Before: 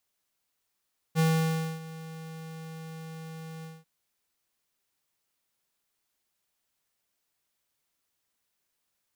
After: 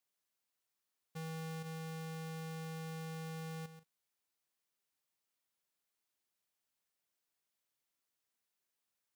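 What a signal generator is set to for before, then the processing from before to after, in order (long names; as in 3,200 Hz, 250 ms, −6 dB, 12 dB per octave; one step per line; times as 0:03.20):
note with an ADSR envelope square 161 Hz, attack 42 ms, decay 602 ms, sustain −19 dB, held 2.49 s, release 204 ms −22.5 dBFS
low-shelf EQ 90 Hz −8.5 dB
output level in coarse steps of 11 dB
brickwall limiter −37.5 dBFS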